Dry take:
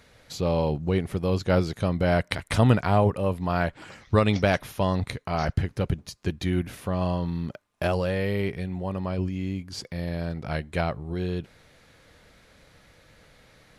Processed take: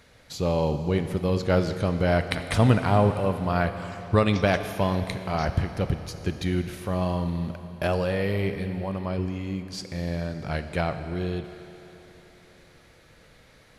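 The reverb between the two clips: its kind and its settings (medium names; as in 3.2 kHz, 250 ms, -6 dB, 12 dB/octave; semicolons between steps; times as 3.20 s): Schroeder reverb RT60 3.4 s, combs from 27 ms, DRR 8.5 dB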